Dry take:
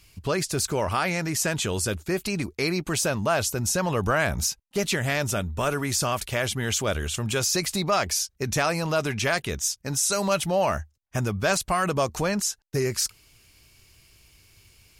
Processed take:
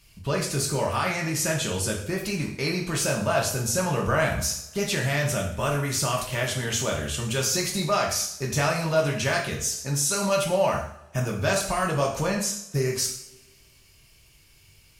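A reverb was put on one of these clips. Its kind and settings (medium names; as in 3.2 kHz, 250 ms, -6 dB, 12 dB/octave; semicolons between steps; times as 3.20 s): two-slope reverb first 0.6 s, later 2.1 s, from -25 dB, DRR -1.5 dB; trim -4 dB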